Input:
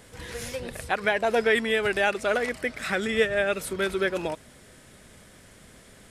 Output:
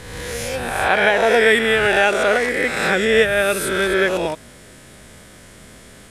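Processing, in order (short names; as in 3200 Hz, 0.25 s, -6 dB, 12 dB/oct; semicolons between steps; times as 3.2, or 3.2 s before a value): spectral swells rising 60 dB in 1.18 s; gain +5.5 dB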